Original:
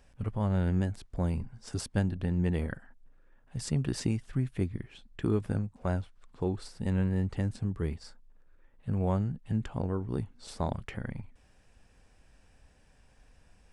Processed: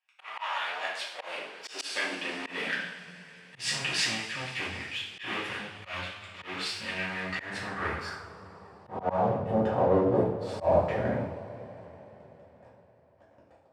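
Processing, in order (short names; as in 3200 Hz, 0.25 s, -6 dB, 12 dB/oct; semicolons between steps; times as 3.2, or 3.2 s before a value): gate -58 dBFS, range -7 dB; sample leveller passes 5; reverb, pre-delay 3 ms, DRR -7 dB; band-pass sweep 2600 Hz -> 580 Hz, 6.93–9.64; auto swell 0.15 s; high-pass sweep 890 Hz -> 79 Hz, 0.46–4.31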